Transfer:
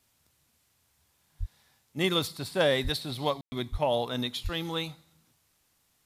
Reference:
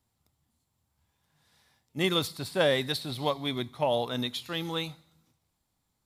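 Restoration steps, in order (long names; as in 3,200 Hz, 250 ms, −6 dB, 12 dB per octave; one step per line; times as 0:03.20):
clipped peaks rebuilt −14.5 dBFS
high-pass at the plosives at 0:01.39/0:02.83/0:03.71/0:04.43
ambience match 0:03.41–0:03.52
downward expander −63 dBFS, range −21 dB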